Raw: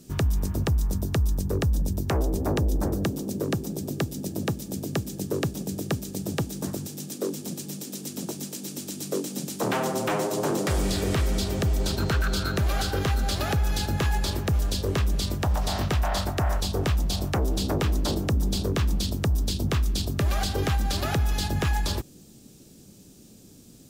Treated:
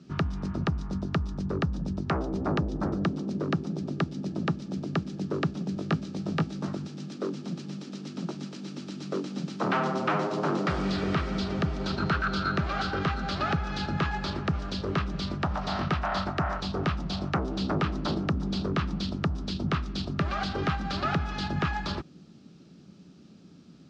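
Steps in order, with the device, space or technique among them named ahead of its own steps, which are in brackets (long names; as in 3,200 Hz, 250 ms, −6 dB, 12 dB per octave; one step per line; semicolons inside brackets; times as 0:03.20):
guitar cabinet (loudspeaker in its box 90–4,500 Hz, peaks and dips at 110 Hz −8 dB, 170 Hz +7 dB, 480 Hz −5 dB, 1,300 Hz +9 dB, 3,500 Hz −3 dB)
0:05.75–0:06.73: double-tracking delay 19 ms −7 dB
level −1.5 dB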